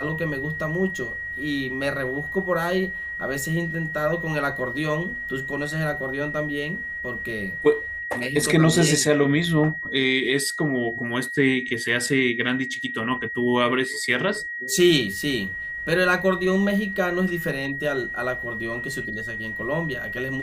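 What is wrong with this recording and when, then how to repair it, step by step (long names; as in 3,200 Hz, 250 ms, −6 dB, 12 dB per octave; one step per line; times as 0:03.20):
whistle 1,900 Hz −29 dBFS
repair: notch filter 1,900 Hz, Q 30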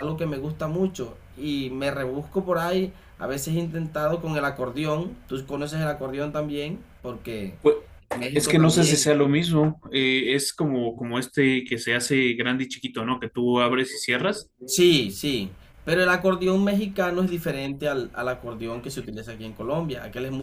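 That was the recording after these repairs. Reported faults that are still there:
none of them is left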